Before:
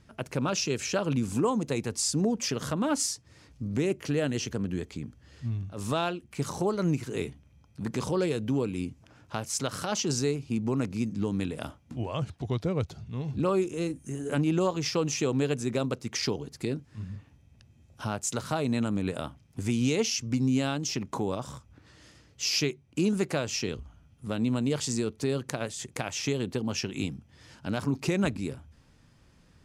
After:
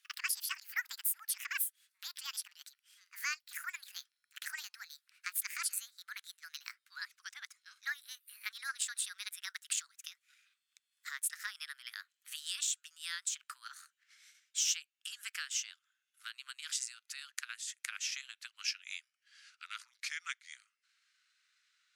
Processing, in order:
gliding playback speed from 191% → 79%
Butterworth high-pass 1,400 Hz 48 dB per octave
transient designer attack +3 dB, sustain −5 dB
level −4.5 dB

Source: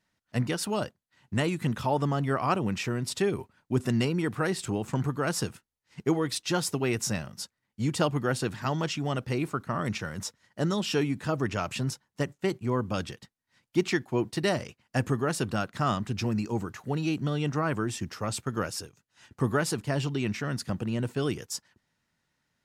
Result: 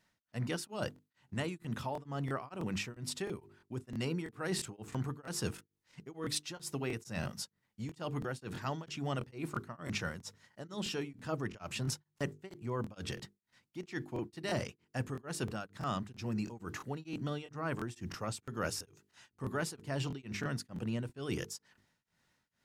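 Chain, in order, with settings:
reversed playback
downward compressor 10 to 1, threshold −34 dBFS, peak gain reduction 15.5 dB
reversed playback
mains-hum notches 50/100/150/200/250/300/350/400/450 Hz
regular buffer underruns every 0.33 s, samples 1,024, repeat, from 0:00.94
tremolo along a rectified sine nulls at 2.2 Hz
level +3 dB

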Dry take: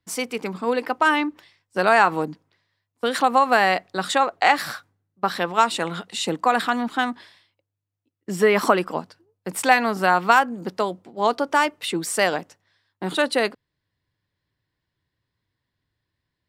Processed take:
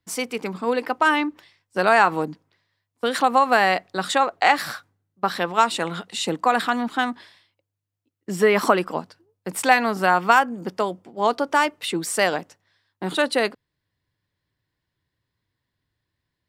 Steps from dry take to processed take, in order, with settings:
0:10.05–0:11.28: notch filter 4,000 Hz, Q 10

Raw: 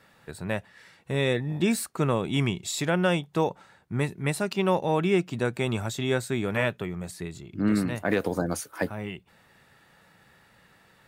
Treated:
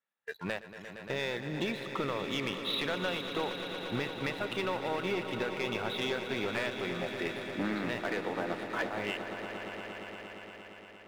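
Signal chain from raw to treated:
gain on one half-wave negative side −7 dB
high-pass filter 620 Hz 6 dB per octave
noise reduction from a noise print of the clip's start 24 dB
Butterworth low-pass 3,900 Hz 96 dB per octave
downward compressor 8 to 1, threshold −40 dBFS, peak gain reduction 16 dB
leveller curve on the samples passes 3
echo that builds up and dies away 116 ms, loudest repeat 5, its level −12.5 dB

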